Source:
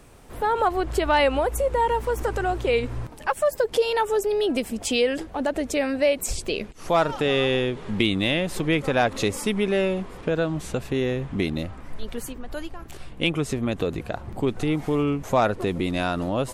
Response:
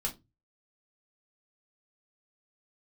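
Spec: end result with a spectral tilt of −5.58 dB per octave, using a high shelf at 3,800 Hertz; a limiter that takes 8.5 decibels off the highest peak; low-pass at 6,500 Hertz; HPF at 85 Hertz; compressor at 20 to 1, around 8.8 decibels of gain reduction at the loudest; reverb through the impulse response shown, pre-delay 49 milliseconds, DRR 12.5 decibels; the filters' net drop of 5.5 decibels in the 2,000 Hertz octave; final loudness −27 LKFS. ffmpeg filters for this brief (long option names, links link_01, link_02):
-filter_complex "[0:a]highpass=85,lowpass=6500,equalizer=frequency=2000:width_type=o:gain=-5,highshelf=frequency=3800:gain=-8,acompressor=threshold=-25dB:ratio=20,alimiter=limit=-22.5dB:level=0:latency=1,asplit=2[link_01][link_02];[1:a]atrim=start_sample=2205,adelay=49[link_03];[link_02][link_03]afir=irnorm=-1:irlink=0,volume=-15dB[link_04];[link_01][link_04]amix=inputs=2:normalize=0,volume=5.5dB"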